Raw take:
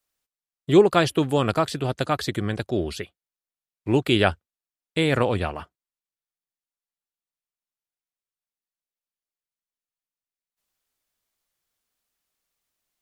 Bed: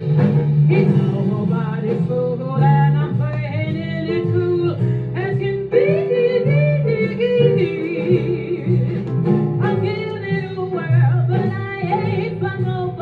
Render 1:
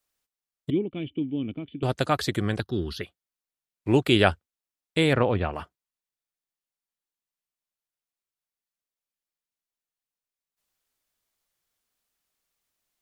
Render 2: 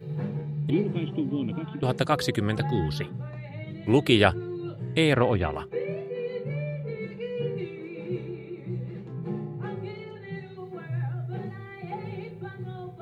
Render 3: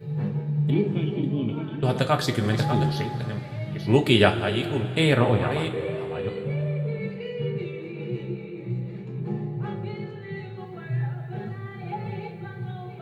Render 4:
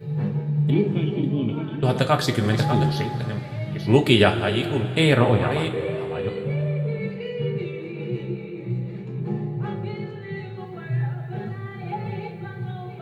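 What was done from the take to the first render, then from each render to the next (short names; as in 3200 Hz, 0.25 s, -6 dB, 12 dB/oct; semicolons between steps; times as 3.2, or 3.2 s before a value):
0.7–1.83 vocal tract filter i; 2.6–3.01 fixed phaser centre 2300 Hz, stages 6; 5.13–5.53 air absorption 290 m
add bed -16.5 dB
reverse delay 0.484 s, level -9 dB; two-slope reverb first 0.24 s, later 3.8 s, from -18 dB, DRR 3.5 dB
gain +2.5 dB; limiter -2 dBFS, peak gain reduction 3 dB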